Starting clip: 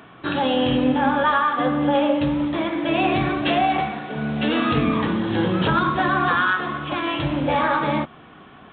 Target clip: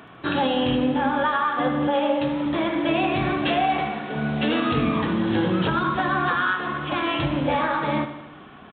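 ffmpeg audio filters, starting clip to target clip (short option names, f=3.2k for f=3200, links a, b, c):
-filter_complex "[0:a]asettb=1/sr,asplit=3[a][b][c];[a]atrim=end=1.874[d];[b]atrim=start=1.87:end=2.46,asetpts=PTS-STARTPTS,afade=t=in:d=0.004:c=qsin,afade=t=out:st=0.586:d=0.004:c=qsin,highpass=f=240:p=1[e];[c]atrim=start=2.456[f];[d][e]acrossfade=d=0.004:c1=hsin:c2=qsin[g];[g][f]acrossfade=d=0.004:c1=qsin:c2=hsin,aecho=1:1:76|152|228|304|380|456:0.251|0.143|0.0816|0.0465|0.0265|0.0151,alimiter=limit=-12.5dB:level=0:latency=1:release=393"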